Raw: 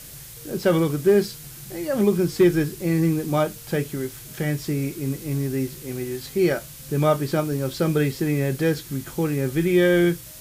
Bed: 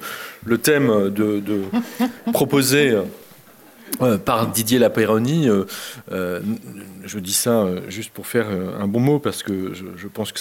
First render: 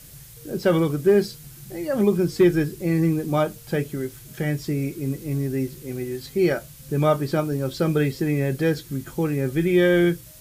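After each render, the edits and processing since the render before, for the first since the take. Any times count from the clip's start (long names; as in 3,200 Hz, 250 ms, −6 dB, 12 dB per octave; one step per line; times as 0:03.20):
broadband denoise 6 dB, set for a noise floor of −41 dBFS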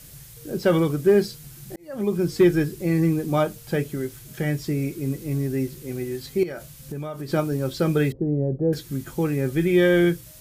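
0:01.76–0:02.31: fade in linear
0:06.43–0:07.33: downward compressor 12 to 1, threshold −28 dBFS
0:08.12–0:08.73: Chebyshev low-pass filter 640 Hz, order 3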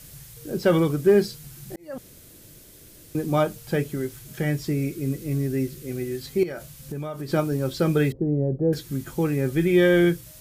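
0:01.98–0:03.15: fill with room tone
0:04.75–0:06.23: parametric band 900 Hz −10 dB 0.3 octaves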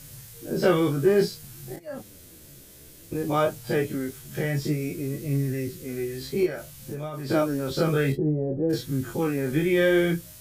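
every bin's largest magnitude spread in time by 60 ms
flanger 0.56 Hz, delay 7.2 ms, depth 8.2 ms, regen +30%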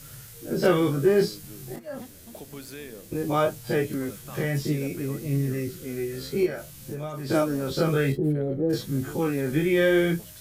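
mix in bed −25.5 dB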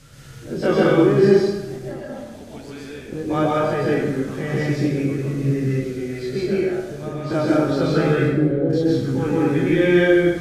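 high-frequency loss of the air 76 metres
dense smooth reverb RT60 1.1 s, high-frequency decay 0.65×, pre-delay 115 ms, DRR −5 dB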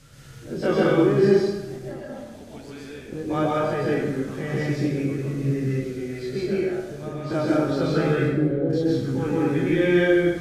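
level −3.5 dB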